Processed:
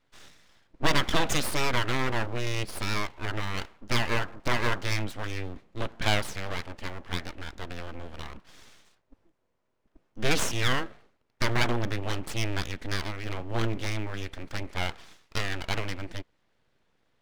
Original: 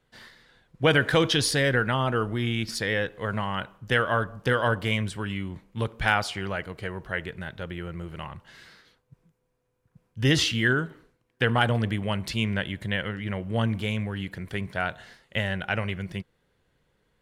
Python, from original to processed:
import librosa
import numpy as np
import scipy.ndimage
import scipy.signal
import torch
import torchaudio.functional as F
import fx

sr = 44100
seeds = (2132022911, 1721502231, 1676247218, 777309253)

y = scipy.signal.sosfilt(scipy.signal.butter(2, 6300.0, 'lowpass', fs=sr, output='sos'), x)
y = np.abs(y)